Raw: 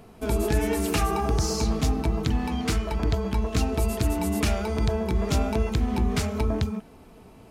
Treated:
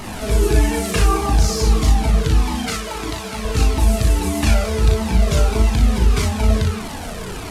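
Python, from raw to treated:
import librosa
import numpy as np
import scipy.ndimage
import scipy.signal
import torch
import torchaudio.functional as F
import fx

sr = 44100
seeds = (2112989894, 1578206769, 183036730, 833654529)

y = fx.delta_mod(x, sr, bps=64000, step_db=-29.0)
y = fx.highpass(y, sr, hz=400.0, slope=6, at=(2.67, 3.45))
y = fx.room_early_taps(y, sr, ms=(37, 59), db=(-3.5, -5.5))
y = fx.comb_cascade(y, sr, direction='falling', hz=1.6)
y = y * librosa.db_to_amplitude(8.0)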